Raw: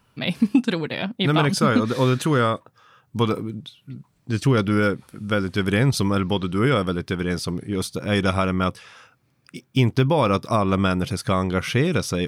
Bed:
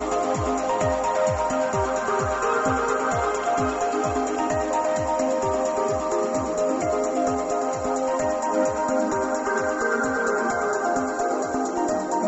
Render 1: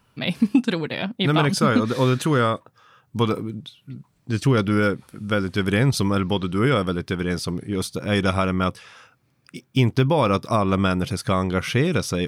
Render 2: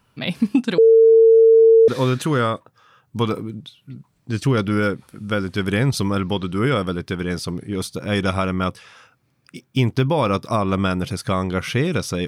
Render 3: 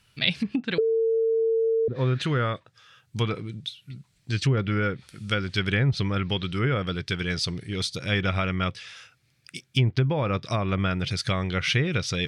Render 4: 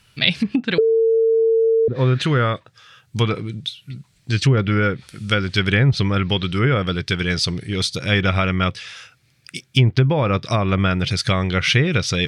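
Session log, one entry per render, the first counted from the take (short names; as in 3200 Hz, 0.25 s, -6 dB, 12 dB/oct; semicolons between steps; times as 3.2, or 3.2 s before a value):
nothing audible
0.78–1.88 bleep 451 Hz -7.5 dBFS
treble ducked by the level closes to 380 Hz, closed at -10.5 dBFS; graphic EQ 250/500/1000/2000/4000/8000 Hz -9/-4/-10/+4/+6/+4 dB
gain +7 dB; limiter -1 dBFS, peak gain reduction 1 dB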